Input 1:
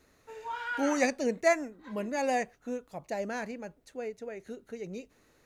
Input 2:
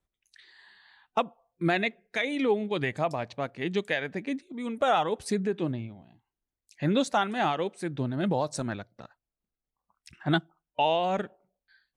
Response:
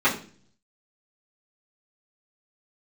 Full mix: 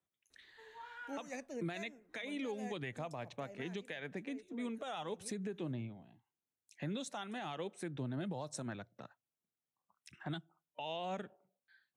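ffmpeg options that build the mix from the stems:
-filter_complex "[0:a]adelay=300,volume=-14.5dB[a];[1:a]highpass=f=99:w=0.5412,highpass=f=99:w=1.3066,volume=-5dB[b];[a][b]amix=inputs=2:normalize=0,equalizer=f=4.6k:w=7.3:g=-10,acrossover=split=140|3000[c][d][e];[d]acompressor=threshold=-35dB:ratio=6[f];[c][f][e]amix=inputs=3:normalize=0,alimiter=level_in=7.5dB:limit=-24dB:level=0:latency=1:release=206,volume=-7.5dB"

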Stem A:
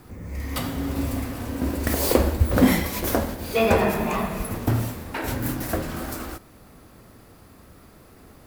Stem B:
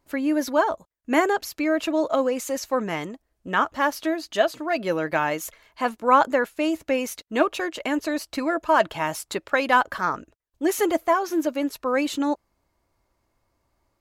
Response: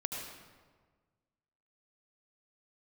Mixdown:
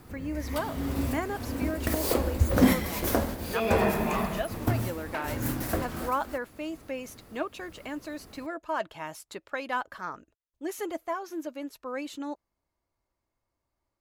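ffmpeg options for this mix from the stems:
-filter_complex "[0:a]volume=-3dB[a];[1:a]volume=-12dB,asplit=3[b][c][d];[b]atrim=end=3.6,asetpts=PTS-STARTPTS,afade=t=out:st=3.596:d=0.004:c=hsin[e];[c]atrim=start=3.6:end=4.24,asetpts=PTS-STARTPTS,volume=0[f];[d]atrim=start=4.24,asetpts=PTS-STARTPTS,afade=t=in:d=0.004:c=hsin[g];[e][f][g]concat=n=3:v=0:a=1,asplit=2[h][i];[i]apad=whole_len=373278[j];[a][j]sidechaincompress=threshold=-33dB:ratio=8:attack=12:release=349[k];[k][h]amix=inputs=2:normalize=0"

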